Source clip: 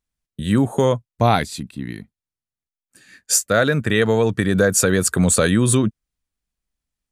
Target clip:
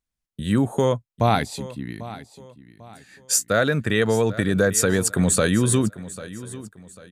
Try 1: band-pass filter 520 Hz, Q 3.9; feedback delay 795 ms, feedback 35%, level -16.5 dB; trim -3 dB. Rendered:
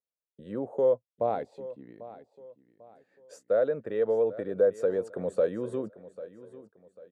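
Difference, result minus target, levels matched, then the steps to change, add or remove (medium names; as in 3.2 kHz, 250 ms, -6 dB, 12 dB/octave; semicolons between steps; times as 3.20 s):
500 Hz band +5.0 dB
remove: band-pass filter 520 Hz, Q 3.9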